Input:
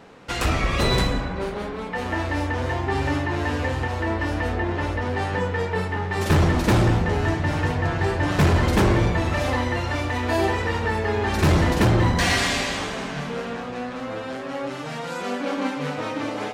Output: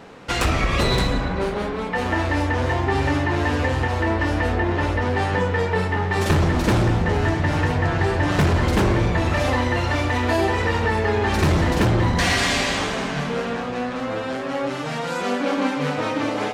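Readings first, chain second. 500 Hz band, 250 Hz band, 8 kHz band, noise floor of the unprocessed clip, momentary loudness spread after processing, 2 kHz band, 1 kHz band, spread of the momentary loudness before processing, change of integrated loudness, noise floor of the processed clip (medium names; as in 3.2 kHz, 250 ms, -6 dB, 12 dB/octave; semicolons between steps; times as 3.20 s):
+2.5 dB, +2.0 dB, +1.5 dB, -32 dBFS, 7 LU, +2.5 dB, +2.5 dB, 11 LU, +2.0 dB, -27 dBFS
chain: compression, threshold -20 dBFS, peak gain reduction 5.5 dB; loudspeaker Doppler distortion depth 0.11 ms; trim +4.5 dB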